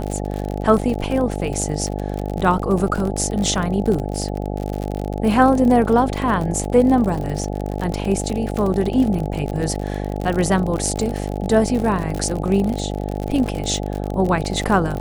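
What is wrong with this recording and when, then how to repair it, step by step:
buzz 50 Hz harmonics 17 -25 dBFS
crackle 50 per s -23 dBFS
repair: de-click; de-hum 50 Hz, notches 17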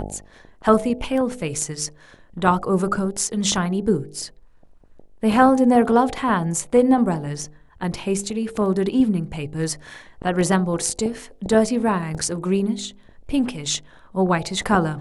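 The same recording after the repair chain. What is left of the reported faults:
nothing left

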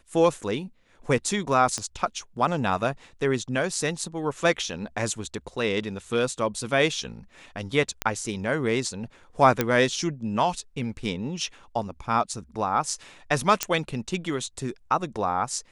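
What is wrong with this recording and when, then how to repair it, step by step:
1.78 s: pop -17 dBFS
8.02 s: pop -8 dBFS
9.61 s: pop -7 dBFS
13.63 s: pop -6 dBFS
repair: de-click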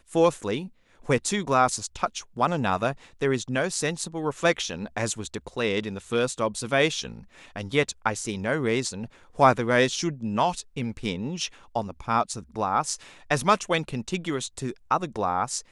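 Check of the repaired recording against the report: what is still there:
1.78 s: pop

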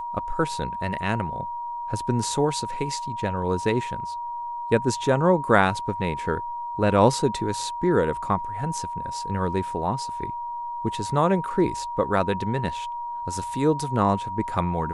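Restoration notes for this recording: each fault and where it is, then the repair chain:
whine 950 Hz -29 dBFS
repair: band-stop 950 Hz, Q 30

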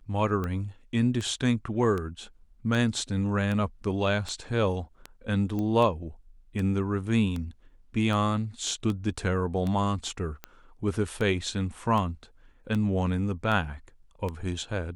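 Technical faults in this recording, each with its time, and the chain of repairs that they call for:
tick 78 rpm -20 dBFS
5.59 s: pop -21 dBFS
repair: de-click

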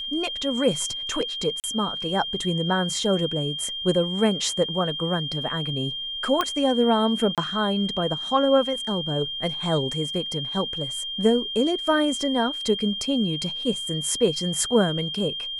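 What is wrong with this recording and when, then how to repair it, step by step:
whine 3.2 kHz -29 dBFS
1.60–1.64 s: dropout 38 ms
6.41 s: pop -9 dBFS
7.35–7.38 s: dropout 27 ms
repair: de-click; band-stop 3.2 kHz, Q 30; interpolate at 1.60 s, 38 ms; interpolate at 7.35 s, 27 ms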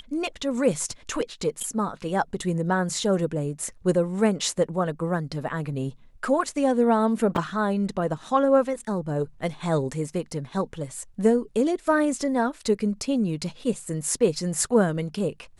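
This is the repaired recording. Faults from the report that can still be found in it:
nothing left

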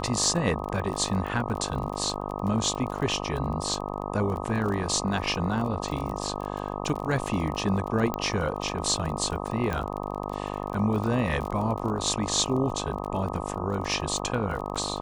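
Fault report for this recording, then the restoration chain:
buzz 50 Hz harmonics 25 -33 dBFS
crackle 27 per s -32 dBFS
8.14 s: pop -14 dBFS
9.73 s: pop -16 dBFS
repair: de-click; de-hum 50 Hz, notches 25

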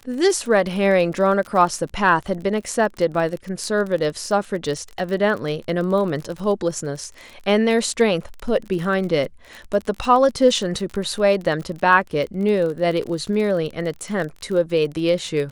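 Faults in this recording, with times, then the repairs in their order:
crackle 29 per s -27 dBFS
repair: de-click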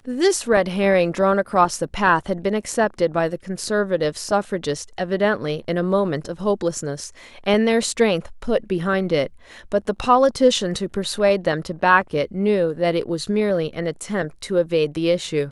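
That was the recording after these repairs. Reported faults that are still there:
nothing left

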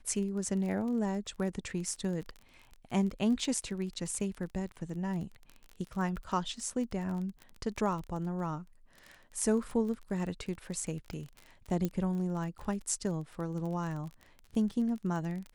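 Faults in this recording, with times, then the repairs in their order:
crackle 25 per s -38 dBFS
11.85 s: pop -19 dBFS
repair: de-click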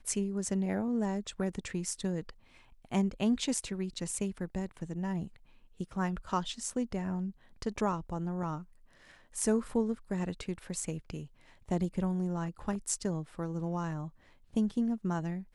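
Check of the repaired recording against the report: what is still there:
11.85 s: pop

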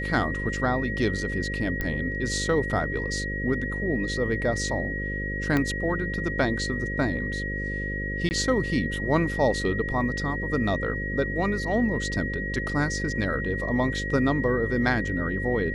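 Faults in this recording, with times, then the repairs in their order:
buzz 50 Hz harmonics 11 -32 dBFS
whine 1.9 kHz -31 dBFS
1.81 s: pop -15 dBFS
5.57 s: pop -12 dBFS
8.29–8.31 s: dropout 19 ms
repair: de-click; de-hum 50 Hz, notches 11; band-stop 1.9 kHz, Q 30; interpolate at 8.29 s, 19 ms

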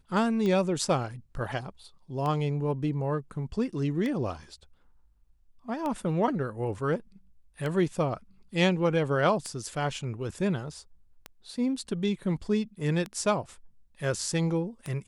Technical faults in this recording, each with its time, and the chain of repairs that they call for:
tick 33 1/3 rpm -20 dBFS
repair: de-click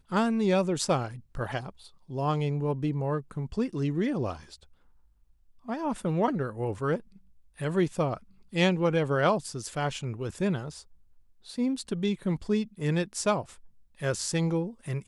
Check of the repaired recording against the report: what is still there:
nothing left

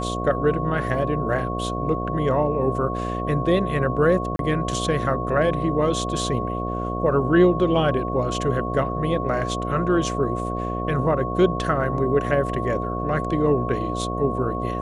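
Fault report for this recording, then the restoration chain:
buzz 60 Hz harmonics 12 -28 dBFS
whine 1.1 kHz -29 dBFS
4.36–4.39 s: dropout 32 ms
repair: band-stop 1.1 kHz, Q 30; de-hum 60 Hz, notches 12; interpolate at 4.36 s, 32 ms

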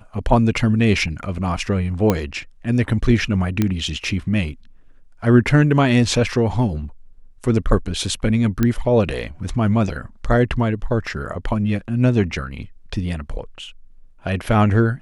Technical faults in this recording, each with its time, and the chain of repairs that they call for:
2.10 s: pop -4 dBFS
3.62 s: pop -6 dBFS
8.63 s: pop -6 dBFS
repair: de-click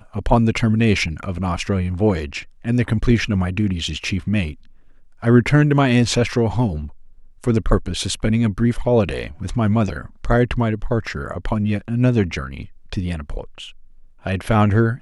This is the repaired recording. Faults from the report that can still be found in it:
nothing left

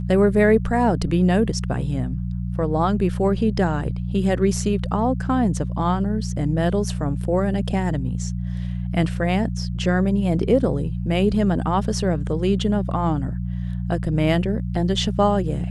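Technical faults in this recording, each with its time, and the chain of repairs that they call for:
hum 60 Hz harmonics 3 -26 dBFS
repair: de-hum 60 Hz, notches 3

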